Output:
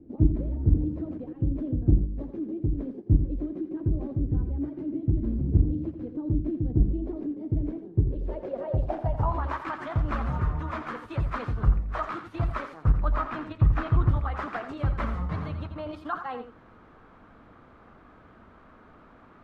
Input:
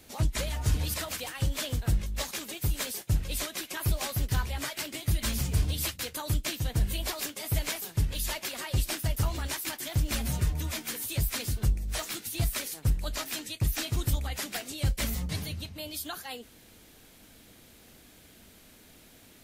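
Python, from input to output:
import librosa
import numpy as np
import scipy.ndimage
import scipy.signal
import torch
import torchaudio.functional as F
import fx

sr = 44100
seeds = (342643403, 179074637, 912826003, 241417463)

p1 = fx.filter_sweep_lowpass(x, sr, from_hz=310.0, to_hz=1200.0, start_s=7.87, end_s=9.58, q=4.2)
p2 = fx.level_steps(p1, sr, step_db=22)
p3 = p1 + (p2 * librosa.db_to_amplitude(0.5))
p4 = fx.bass_treble(p3, sr, bass_db=7, treble_db=-6, at=(12.98, 14.11))
y = p4 + 10.0 ** (-9.5 / 20.0) * np.pad(p4, (int(86 * sr / 1000.0), 0))[:len(p4)]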